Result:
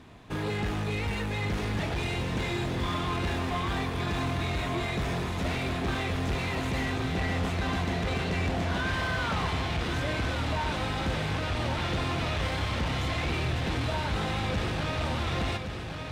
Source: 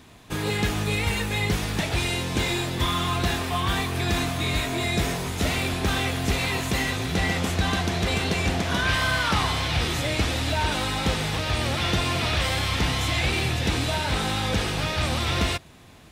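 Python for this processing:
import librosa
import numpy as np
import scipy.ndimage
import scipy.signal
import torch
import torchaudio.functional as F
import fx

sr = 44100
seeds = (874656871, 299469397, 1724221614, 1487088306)

y = 10.0 ** (-25.5 / 20.0) * np.tanh(x / 10.0 ** (-25.5 / 20.0))
y = fx.lowpass(y, sr, hz=2100.0, slope=6)
y = fx.echo_feedback(y, sr, ms=1118, feedback_pct=51, wet_db=-7)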